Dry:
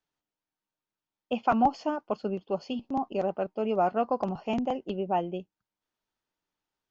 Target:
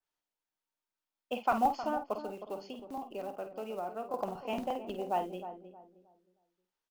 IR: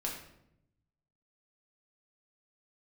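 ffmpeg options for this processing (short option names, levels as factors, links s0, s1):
-filter_complex "[0:a]acrusher=bits=7:mode=log:mix=0:aa=0.000001,asettb=1/sr,asplit=3[s0][s1][s2];[s0]atrim=end=2.194[s3];[s1]atrim=start=2.19:end=4.14,asetpts=PTS-STARTPTS,afade=t=in:d=0.004:c=qsin,afade=t=out:st=1.946:d=0.004:c=qsin,acrossover=split=530|1100[s4][s5][s6];[s4]acompressor=threshold=0.0178:ratio=4[s7];[s5]acompressor=threshold=0.0112:ratio=4[s8];[s6]acompressor=threshold=0.00355:ratio=4[s9];[s7][s8][s9]amix=inputs=3:normalize=0[s10];[s2]atrim=start=4.136[s11];[s3][s10]acrossfade=d=0.004:c1=hsin:c2=qsin[s12];[s12][s11]acrossfade=d=0.004:c1=qsin:c2=hsin,equalizer=f=130:t=o:w=2.5:g=-10,asplit=2[s13][s14];[s14]adelay=50,volume=0.355[s15];[s13][s15]amix=inputs=2:normalize=0,asplit=2[s16][s17];[s17]adelay=313,lowpass=f=890:p=1,volume=0.335,asplit=2[s18][s19];[s19]adelay=313,lowpass=f=890:p=1,volume=0.33,asplit=2[s20][s21];[s21]adelay=313,lowpass=f=890:p=1,volume=0.33,asplit=2[s22][s23];[s23]adelay=313,lowpass=f=890:p=1,volume=0.33[s24];[s18][s20][s22][s24]amix=inputs=4:normalize=0[s25];[s16][s25]amix=inputs=2:normalize=0,adynamicequalizer=threshold=0.00501:dfrequency=2500:dqfactor=0.7:tfrequency=2500:tqfactor=0.7:attack=5:release=100:ratio=0.375:range=1.5:mode=cutabove:tftype=highshelf,volume=0.708"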